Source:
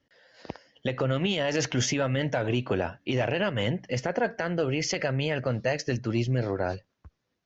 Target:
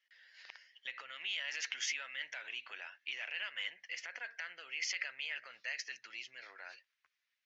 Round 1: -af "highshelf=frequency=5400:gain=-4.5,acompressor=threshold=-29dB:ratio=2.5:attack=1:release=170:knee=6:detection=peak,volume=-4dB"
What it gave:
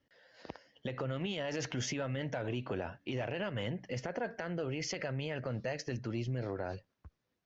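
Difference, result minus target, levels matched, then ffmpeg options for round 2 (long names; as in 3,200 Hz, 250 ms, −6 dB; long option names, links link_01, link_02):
2,000 Hz band −6.5 dB
-af "highshelf=frequency=5400:gain=-4.5,acompressor=threshold=-29dB:ratio=2.5:attack=1:release=170:knee=6:detection=peak,highpass=frequency=2100:width_type=q:width=2.1,volume=-4dB"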